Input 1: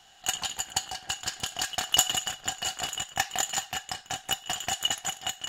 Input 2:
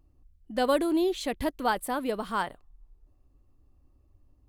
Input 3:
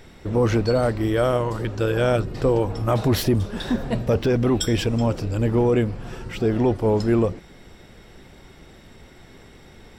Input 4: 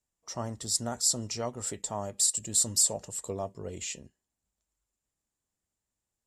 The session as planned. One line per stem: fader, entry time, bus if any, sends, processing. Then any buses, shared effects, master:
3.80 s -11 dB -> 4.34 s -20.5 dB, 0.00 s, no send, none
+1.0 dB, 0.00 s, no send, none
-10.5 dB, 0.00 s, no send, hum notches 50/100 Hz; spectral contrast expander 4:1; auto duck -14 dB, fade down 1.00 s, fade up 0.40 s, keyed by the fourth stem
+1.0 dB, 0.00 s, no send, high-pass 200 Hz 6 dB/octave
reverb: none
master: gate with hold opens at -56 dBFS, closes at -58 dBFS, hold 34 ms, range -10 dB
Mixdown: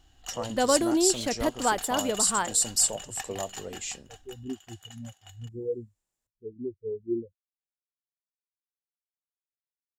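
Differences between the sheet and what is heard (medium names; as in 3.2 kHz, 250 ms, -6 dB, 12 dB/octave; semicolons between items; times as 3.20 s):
stem 3: missing hum notches 50/100 Hz; master: missing gate with hold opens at -56 dBFS, closes at -58 dBFS, hold 34 ms, range -10 dB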